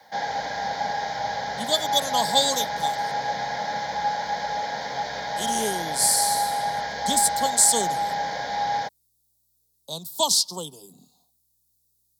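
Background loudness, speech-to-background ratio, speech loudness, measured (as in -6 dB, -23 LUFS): -27.5 LUFS, 4.5 dB, -23.0 LUFS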